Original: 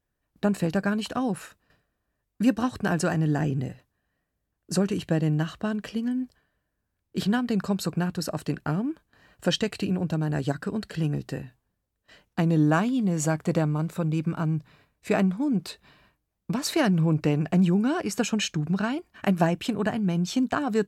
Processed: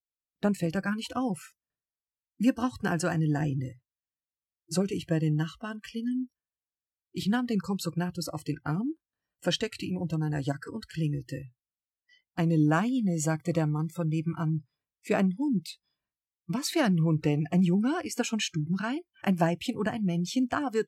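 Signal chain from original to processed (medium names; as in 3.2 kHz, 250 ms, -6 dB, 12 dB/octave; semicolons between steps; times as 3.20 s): spectral noise reduction 29 dB; trim -2.5 dB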